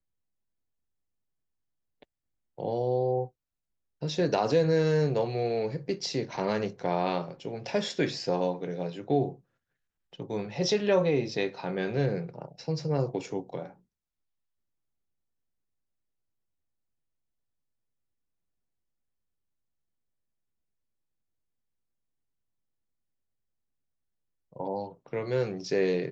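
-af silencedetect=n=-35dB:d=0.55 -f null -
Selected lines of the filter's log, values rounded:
silence_start: 0.00
silence_end: 2.58 | silence_duration: 2.58
silence_start: 3.25
silence_end: 4.02 | silence_duration: 0.77
silence_start: 9.32
silence_end: 10.20 | silence_duration: 0.88
silence_start: 13.66
silence_end: 24.56 | silence_duration: 10.91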